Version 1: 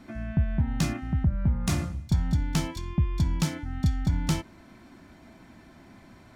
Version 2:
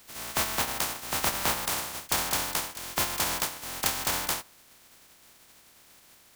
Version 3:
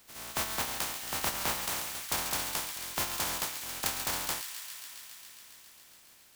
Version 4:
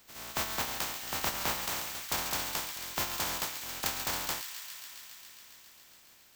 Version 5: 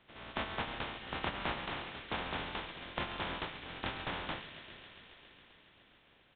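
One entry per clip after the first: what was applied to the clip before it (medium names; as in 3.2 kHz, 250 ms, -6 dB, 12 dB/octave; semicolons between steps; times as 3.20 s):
spectral contrast reduction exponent 0.11; dynamic bell 910 Hz, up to +7 dB, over -46 dBFS, Q 1.1; trim -5 dB
feedback echo behind a high-pass 137 ms, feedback 82%, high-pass 1.8 kHz, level -9 dB; trim -5 dB
peaking EQ 10 kHz -10 dB 0.25 oct
in parallel at -11 dB: sample-and-hold 35×; on the sum: resampled via 8 kHz; trim -2.5 dB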